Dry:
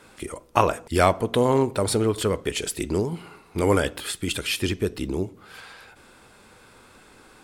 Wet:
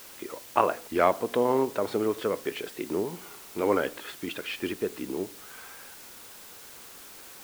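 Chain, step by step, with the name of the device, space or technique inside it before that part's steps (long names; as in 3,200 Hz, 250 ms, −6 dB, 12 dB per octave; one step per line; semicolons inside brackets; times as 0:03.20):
wax cylinder (band-pass filter 260–2,300 Hz; tape wow and flutter; white noise bed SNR 17 dB)
level −3 dB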